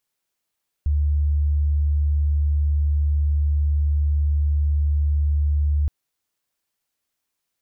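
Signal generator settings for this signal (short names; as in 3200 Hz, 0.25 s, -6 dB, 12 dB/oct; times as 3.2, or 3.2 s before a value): tone sine 73.5 Hz -16.5 dBFS 5.02 s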